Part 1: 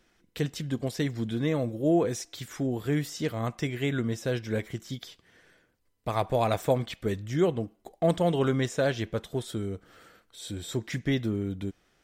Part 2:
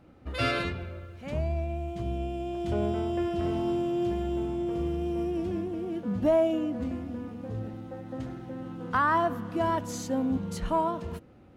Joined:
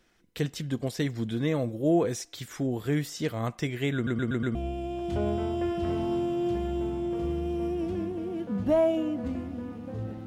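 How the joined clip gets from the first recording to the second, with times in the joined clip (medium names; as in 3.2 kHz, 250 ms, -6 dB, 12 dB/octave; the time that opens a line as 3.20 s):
part 1
3.95 s: stutter in place 0.12 s, 5 plays
4.55 s: go over to part 2 from 2.11 s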